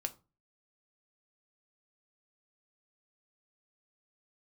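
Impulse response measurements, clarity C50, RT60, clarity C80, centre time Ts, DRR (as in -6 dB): 19.0 dB, 0.30 s, 25.0 dB, 5 ms, 6.5 dB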